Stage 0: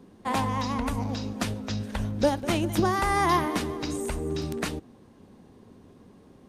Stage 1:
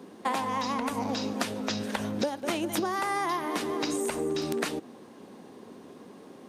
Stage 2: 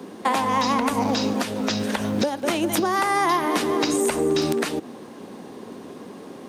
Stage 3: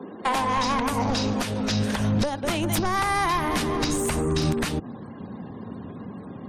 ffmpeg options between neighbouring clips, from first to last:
-af "highpass=270,acompressor=threshold=0.02:ratio=12,volume=2.51"
-filter_complex "[0:a]acrossover=split=190|1300[s0][s1][s2];[s0]acrusher=bits=4:mode=log:mix=0:aa=0.000001[s3];[s3][s1][s2]amix=inputs=3:normalize=0,alimiter=limit=0.106:level=0:latency=1:release=230,volume=2.82"
-af "aeval=exprs='0.316*sin(PI/2*1.78*val(0)/0.316)':c=same,afftfilt=real='re*gte(hypot(re,im),0.0126)':imag='im*gte(hypot(re,im),0.0126)':win_size=1024:overlap=0.75,asubboost=boost=10:cutoff=120,volume=0.376"

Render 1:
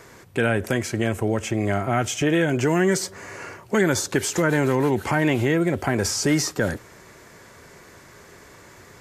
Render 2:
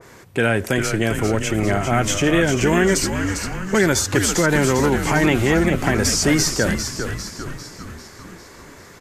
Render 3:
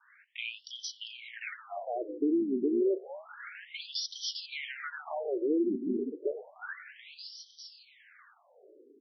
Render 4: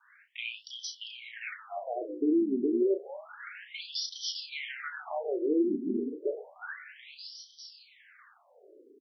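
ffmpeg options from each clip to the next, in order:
-filter_complex "[0:a]asplit=2[s0][s1];[s1]asplit=7[s2][s3][s4][s5][s6][s7][s8];[s2]adelay=399,afreqshift=-97,volume=0.447[s9];[s3]adelay=798,afreqshift=-194,volume=0.254[s10];[s4]adelay=1197,afreqshift=-291,volume=0.145[s11];[s5]adelay=1596,afreqshift=-388,volume=0.0832[s12];[s6]adelay=1995,afreqshift=-485,volume=0.0473[s13];[s7]adelay=2394,afreqshift=-582,volume=0.0269[s14];[s8]adelay=2793,afreqshift=-679,volume=0.0153[s15];[s9][s10][s11][s12][s13][s14][s15]amix=inputs=7:normalize=0[s16];[s0][s16]amix=inputs=2:normalize=0,adynamicequalizer=threshold=0.0224:dfrequency=1600:dqfactor=0.7:tfrequency=1600:tqfactor=0.7:attack=5:release=100:ratio=0.375:range=1.5:mode=boostabove:tftype=highshelf,volume=1.33"
-af "equalizer=f=980:t=o:w=0.69:g=-12.5,afftfilt=real='re*between(b*sr/1024,290*pow(4300/290,0.5+0.5*sin(2*PI*0.3*pts/sr))/1.41,290*pow(4300/290,0.5+0.5*sin(2*PI*0.3*pts/sr))*1.41)':imag='im*between(b*sr/1024,290*pow(4300/290,0.5+0.5*sin(2*PI*0.3*pts/sr))/1.41,290*pow(4300/290,0.5+0.5*sin(2*PI*0.3*pts/sr))*1.41)':win_size=1024:overlap=0.75,volume=0.447"
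-filter_complex "[0:a]asplit=2[s0][s1];[s1]adelay=33,volume=0.447[s2];[s0][s2]amix=inputs=2:normalize=0"

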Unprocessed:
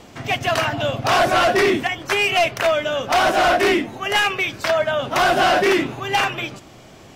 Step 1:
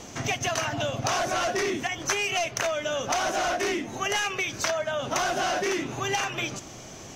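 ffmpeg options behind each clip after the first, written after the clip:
-af "acompressor=threshold=0.0562:ratio=10,equalizer=f=6200:t=o:w=0.37:g=14"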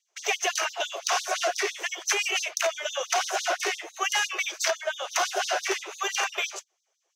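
-af "agate=range=0.0224:threshold=0.0178:ratio=16:detection=peak,afftfilt=real='re*gte(b*sr/1024,320*pow(3600/320,0.5+0.5*sin(2*PI*5.9*pts/sr)))':imag='im*gte(b*sr/1024,320*pow(3600/320,0.5+0.5*sin(2*PI*5.9*pts/sr)))':win_size=1024:overlap=0.75,volume=1.33"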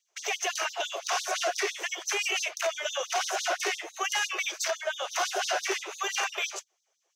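-af "alimiter=limit=0.1:level=0:latency=1:release=40"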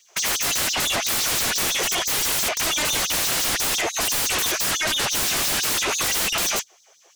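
-af "aeval=exprs='0.106*sin(PI/2*7.08*val(0)/0.106)':c=same"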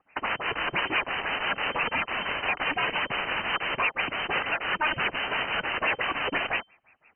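-af "lowpass=f=2600:t=q:w=0.5098,lowpass=f=2600:t=q:w=0.6013,lowpass=f=2600:t=q:w=0.9,lowpass=f=2600:t=q:w=2.563,afreqshift=-3100"

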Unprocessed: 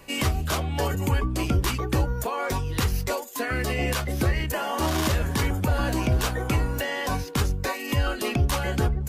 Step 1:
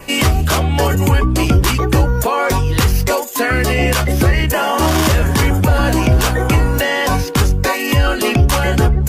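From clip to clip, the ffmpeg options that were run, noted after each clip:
-filter_complex "[0:a]adynamicequalizer=threshold=0.002:dfrequency=4000:dqfactor=6.7:tfrequency=4000:tqfactor=6.7:attack=5:release=100:ratio=0.375:range=2:mode=cutabove:tftype=bell,asplit=2[s0][s1];[s1]alimiter=limit=0.0668:level=0:latency=1:release=31,volume=1.12[s2];[s0][s2]amix=inputs=2:normalize=0,volume=2.37"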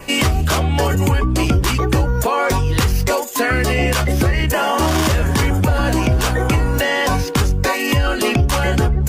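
-af "equalizer=f=12000:t=o:w=0.33:g=-4.5,acompressor=threshold=0.224:ratio=2.5"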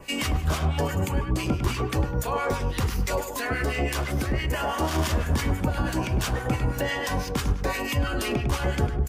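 -filter_complex "[0:a]asplit=2[s0][s1];[s1]adelay=102,lowpass=f=2100:p=1,volume=0.562,asplit=2[s2][s3];[s3]adelay=102,lowpass=f=2100:p=1,volume=0.42,asplit=2[s4][s5];[s5]adelay=102,lowpass=f=2100:p=1,volume=0.42,asplit=2[s6][s7];[s7]adelay=102,lowpass=f=2100:p=1,volume=0.42,asplit=2[s8][s9];[s9]adelay=102,lowpass=f=2100:p=1,volume=0.42[s10];[s0][s2][s4][s6][s8][s10]amix=inputs=6:normalize=0,acrossover=split=1200[s11][s12];[s11]aeval=exprs='val(0)*(1-0.7/2+0.7/2*cos(2*PI*6*n/s))':c=same[s13];[s12]aeval=exprs='val(0)*(1-0.7/2-0.7/2*cos(2*PI*6*n/s))':c=same[s14];[s13][s14]amix=inputs=2:normalize=0,volume=0.422"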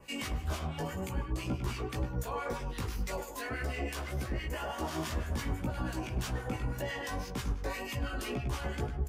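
-af "flanger=delay=15.5:depth=3.1:speed=1.9,volume=0.447"

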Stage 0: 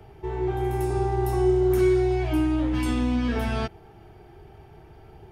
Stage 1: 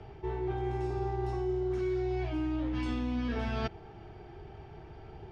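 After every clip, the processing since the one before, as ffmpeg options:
-af "lowpass=f=5900:w=0.5412,lowpass=f=5900:w=1.3066,areverse,acompressor=threshold=0.0316:ratio=6,areverse"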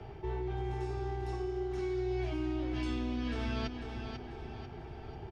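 -filter_complex "[0:a]acrossover=split=100|2500[s0][s1][s2];[s1]alimiter=level_in=2.82:limit=0.0631:level=0:latency=1:release=186,volume=0.355[s3];[s0][s3][s2]amix=inputs=3:normalize=0,aecho=1:1:493|986|1479|1972|2465:0.447|0.192|0.0826|0.0355|0.0153,volume=1.19"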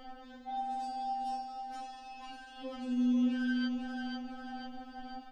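-filter_complex "[0:a]acrossover=split=2800[s0][s1];[s1]acompressor=threshold=0.00178:ratio=4:attack=1:release=60[s2];[s0][s2]amix=inputs=2:normalize=0,equalizer=f=2300:w=4.3:g=-9.5,afftfilt=real='re*3.46*eq(mod(b,12),0)':imag='im*3.46*eq(mod(b,12),0)':win_size=2048:overlap=0.75,volume=1.88"

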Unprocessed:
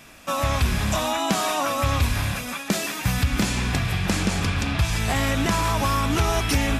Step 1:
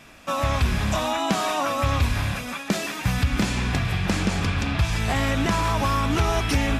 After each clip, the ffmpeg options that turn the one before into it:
-af "highshelf=f=7100:g=-9"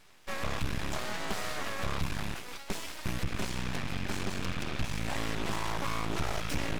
-af "aeval=exprs='(tanh(8.91*val(0)+0.7)-tanh(0.7))/8.91':c=same,aeval=exprs='abs(val(0))':c=same,volume=0.562"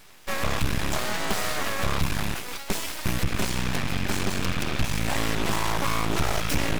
-af "highshelf=f=11000:g=9.5,volume=2.37"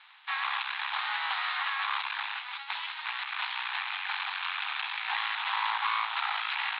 -af "areverse,acompressor=mode=upward:threshold=0.0141:ratio=2.5,areverse,asuperpass=centerf=1800:order=20:qfactor=0.56"

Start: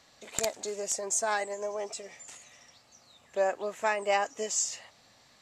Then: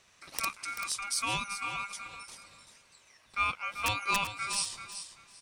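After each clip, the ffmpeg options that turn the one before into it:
-af "aeval=exprs='(mod(5.31*val(0)+1,2)-1)/5.31':c=same,aeval=exprs='val(0)*sin(2*PI*1800*n/s)':c=same,aecho=1:1:387|774|1161:0.316|0.0664|0.0139"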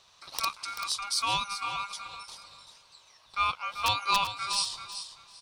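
-af "equalizer=f=250:t=o:w=1:g=-6,equalizer=f=1000:t=o:w=1:g=8,equalizer=f=2000:t=o:w=1:g=-8,equalizer=f=4000:t=o:w=1:g=11,equalizer=f=8000:t=o:w=1:g=-4"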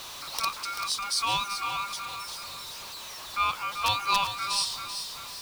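-af "aeval=exprs='val(0)+0.5*0.0158*sgn(val(0))':c=same"

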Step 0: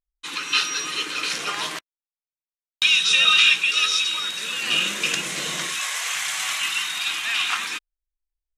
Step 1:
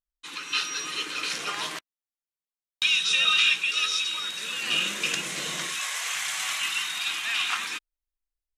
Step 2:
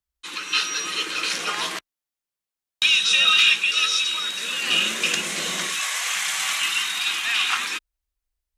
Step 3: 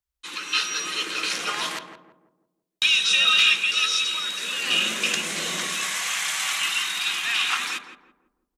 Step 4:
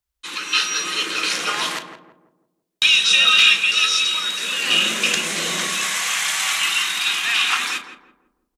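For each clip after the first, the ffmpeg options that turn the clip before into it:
-af "dynaudnorm=f=450:g=3:m=1.58,volume=0.422"
-af "volume=4.47,asoftclip=hard,volume=0.224,afreqshift=18,acontrast=25"
-filter_complex "[0:a]asplit=2[s0][s1];[s1]adelay=167,lowpass=f=840:p=1,volume=0.531,asplit=2[s2][s3];[s3]adelay=167,lowpass=f=840:p=1,volume=0.46,asplit=2[s4][s5];[s5]adelay=167,lowpass=f=840:p=1,volume=0.46,asplit=2[s6][s7];[s7]adelay=167,lowpass=f=840:p=1,volume=0.46,asplit=2[s8][s9];[s9]adelay=167,lowpass=f=840:p=1,volume=0.46,asplit=2[s10][s11];[s11]adelay=167,lowpass=f=840:p=1,volume=0.46[s12];[s0][s2][s4][s6][s8][s10][s12]amix=inputs=7:normalize=0,volume=0.841"
-filter_complex "[0:a]asplit=2[s0][s1];[s1]adelay=35,volume=0.251[s2];[s0][s2]amix=inputs=2:normalize=0,volume=1.68"

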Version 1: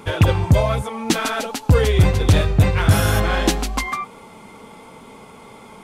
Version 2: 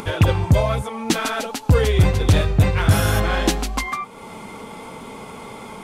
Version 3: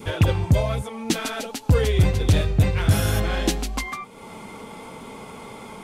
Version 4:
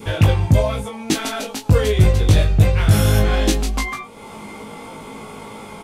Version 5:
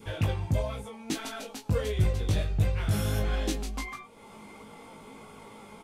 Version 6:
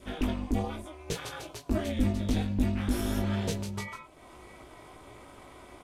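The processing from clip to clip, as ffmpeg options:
-af "acompressor=mode=upward:threshold=0.0501:ratio=2.5,volume=0.891"
-af "adynamicequalizer=threshold=0.0126:dfrequency=1100:dqfactor=0.98:tfrequency=1100:tqfactor=0.98:attack=5:release=100:ratio=0.375:range=3:mode=cutabove:tftype=bell,volume=0.75"
-af "aecho=1:1:19|38:0.668|0.299,volume=1.26"
-af "flanger=delay=0.6:depth=4.6:regen=78:speed=1.5:shape=sinusoidal,volume=0.376"
-af "aeval=exprs='val(0)*sin(2*PI*150*n/s)':c=same,volume=1.12"

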